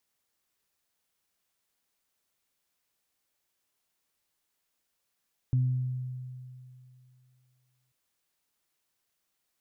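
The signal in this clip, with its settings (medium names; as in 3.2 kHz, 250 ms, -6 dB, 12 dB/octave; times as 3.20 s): additive tone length 2.39 s, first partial 127 Hz, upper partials -16.5 dB, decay 2.61 s, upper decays 0.97 s, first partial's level -21 dB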